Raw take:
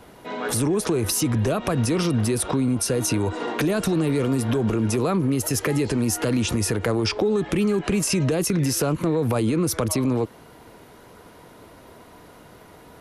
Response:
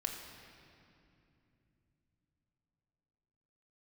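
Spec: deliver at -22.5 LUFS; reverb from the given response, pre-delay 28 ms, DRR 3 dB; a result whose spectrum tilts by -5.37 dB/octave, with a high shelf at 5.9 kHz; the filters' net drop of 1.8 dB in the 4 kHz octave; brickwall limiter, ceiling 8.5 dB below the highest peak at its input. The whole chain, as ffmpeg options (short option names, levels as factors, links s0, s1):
-filter_complex "[0:a]equalizer=f=4000:t=o:g=-6,highshelf=f=5900:g=6.5,alimiter=limit=0.15:level=0:latency=1,asplit=2[s0][s1];[1:a]atrim=start_sample=2205,adelay=28[s2];[s1][s2]afir=irnorm=-1:irlink=0,volume=0.631[s3];[s0][s3]amix=inputs=2:normalize=0,volume=1.06"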